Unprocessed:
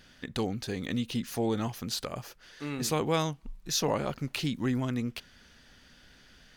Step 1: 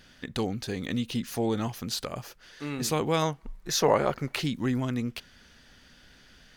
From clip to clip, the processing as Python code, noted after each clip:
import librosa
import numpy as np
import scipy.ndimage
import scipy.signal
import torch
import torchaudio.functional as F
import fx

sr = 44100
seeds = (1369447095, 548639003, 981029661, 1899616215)

y = fx.spec_box(x, sr, start_s=3.22, length_s=1.2, low_hz=340.0, high_hz=2300.0, gain_db=6)
y = F.gain(torch.from_numpy(y), 1.5).numpy()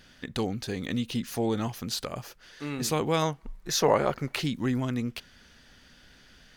y = x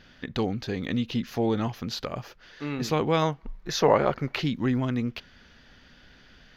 y = np.convolve(x, np.full(5, 1.0 / 5))[:len(x)]
y = F.gain(torch.from_numpy(y), 2.5).numpy()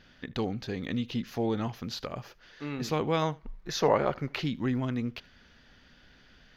y = x + 10.0 ** (-23.5 / 20.0) * np.pad(x, (int(77 * sr / 1000.0), 0))[:len(x)]
y = F.gain(torch.from_numpy(y), -4.0).numpy()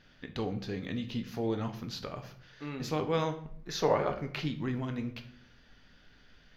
y = fx.room_shoebox(x, sr, seeds[0], volume_m3=75.0, walls='mixed', distance_m=0.39)
y = F.gain(torch.from_numpy(y), -4.0).numpy()